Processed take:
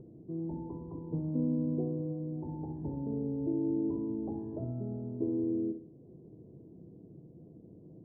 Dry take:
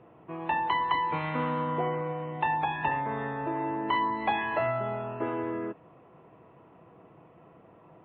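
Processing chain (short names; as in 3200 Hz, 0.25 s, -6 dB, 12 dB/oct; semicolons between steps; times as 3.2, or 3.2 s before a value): inverse Chebyshev low-pass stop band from 2200 Hz, stop band 80 dB; upward compressor, threshold -50 dBFS; on a send: flutter echo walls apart 10.5 m, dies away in 0.41 s; on the sum: gain +3 dB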